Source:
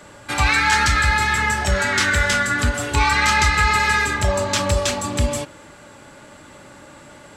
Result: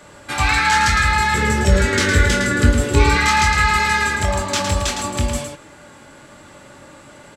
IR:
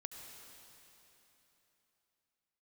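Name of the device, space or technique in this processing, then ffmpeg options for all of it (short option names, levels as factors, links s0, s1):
slapback doubling: -filter_complex "[0:a]asettb=1/sr,asplit=3[s0][s1][s2];[s0]atrim=end=1.344[s3];[s1]atrim=start=1.34:end=3.17,asetpts=PTS-STARTPTS,afade=t=in:d=0.004:c=qsin,afade=t=out:st=1.826:d=0.004:c=qsin,lowshelf=f=590:t=q:w=3:g=7[s4];[s2]atrim=start=3.166[s5];[s3][s4]acrossfade=d=0.004:c1=hsin:c2=qsin[s6];[s6][s5]acrossfade=d=0.004:c1=qsin:c2=hsin,asplit=3[s7][s8][s9];[s8]adelay=22,volume=0.447[s10];[s9]adelay=110,volume=0.501[s11];[s7][s10][s11]amix=inputs=3:normalize=0,volume=0.891"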